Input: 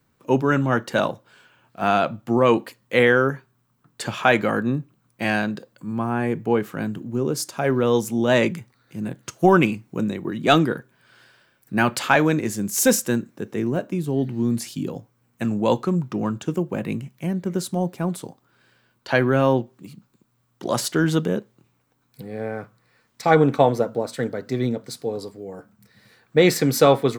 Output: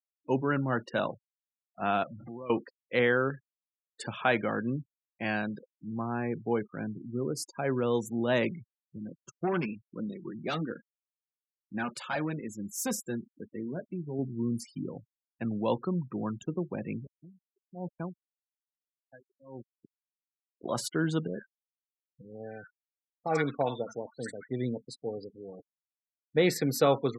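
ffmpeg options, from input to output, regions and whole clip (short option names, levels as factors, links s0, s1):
-filter_complex "[0:a]asettb=1/sr,asplit=3[s0][s1][s2];[s0]atrim=end=2.034[s3];[s1]atrim=start=2.03:end=2.5,asetpts=PTS-STARTPTS,afade=t=in:d=0.004:c=qsin,afade=t=out:st=0.466:d=0.004:c=qsin,aeval=exprs='val(0)+0.5*0.0224*sgn(val(0))':c=same,acompressor=threshold=0.0282:ratio=5:attack=3.2:release=140:knee=1:detection=peak[s4];[s2]atrim=start=2.496[s5];[s3][s4]acrossfade=d=0.004:c1=hsin:c2=qsin[s6];[s6][s5]acrossfade=d=0.004:c1=qsin:c2=hsin,asettb=1/sr,asplit=3[s7][s8][s9];[s7]atrim=end=8.984[s10];[s8]atrim=start=8.98:end=14.19,asetpts=PTS-STARTPTS,afade=t=in:d=0.004:c=qsin,afade=t=out:st=5.206:d=0.004:c=qsin,asoftclip=type=hard:threshold=0.237,flanger=delay=3.6:depth=2.1:regen=-43:speed=1.1:shape=sinusoidal[s11];[s9]atrim=start=14.186[s12];[s10][s11]acrossfade=d=0.004:c1=hsin:c2=qsin[s13];[s13][s12]acrossfade=d=0.004:c1=qsin:c2=hsin,asettb=1/sr,asplit=3[s14][s15][s16];[s14]atrim=end=17.044[s17];[s15]atrim=start=17.04:end=20.7,asetpts=PTS-STARTPTS,afade=t=in:d=0.004:c=qsin,afade=t=out:st=3.656:d=0.004:c=qsin,aeval=exprs='val(0)*gte(abs(val(0)),0.0251)':c=same,aeval=exprs='val(0)*pow(10,-33*(0.5-0.5*cos(2*PI*1.1*n/s))/20)':c=same[s18];[s16]atrim=start=20.696[s19];[s17][s18]acrossfade=d=0.004:c1=hsin:c2=qsin[s20];[s20][s19]acrossfade=d=0.004:c1=qsin:c2=hsin,asettb=1/sr,asplit=3[s21][s22][s23];[s21]atrim=end=21.274[s24];[s22]atrim=start=21.27:end=24.51,asetpts=PTS-STARTPTS,afade=t=in:d=0.004:c=qsin,afade=t=out:st=3.236:d=0.004:c=qsin,tiltshelf=f=1300:g=-5,acrossover=split=1100|3900[s25][s26][s27];[s26]adelay=70[s28];[s27]adelay=150[s29];[s25][s28][s29]amix=inputs=3:normalize=0,atrim=end_sample=142884[s30];[s23]atrim=start=24.506[s31];[s24][s30]acrossfade=d=0.004:c1=hsin:c2=qsin[s32];[s32][s31]acrossfade=d=0.004:c1=qsin:c2=hsin,highpass=50,afftfilt=real='re*gte(hypot(re,im),0.0282)':imag='im*gte(hypot(re,im),0.0282)':win_size=1024:overlap=0.75,volume=0.355"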